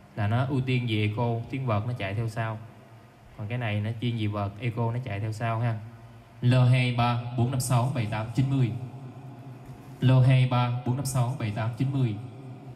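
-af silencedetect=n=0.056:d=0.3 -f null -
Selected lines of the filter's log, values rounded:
silence_start: 2.52
silence_end: 3.52 | silence_duration: 1.00
silence_start: 5.74
silence_end: 6.43 | silence_duration: 0.70
silence_start: 8.76
silence_end: 10.03 | silence_duration: 1.26
silence_start: 12.13
silence_end: 12.75 | silence_duration: 0.62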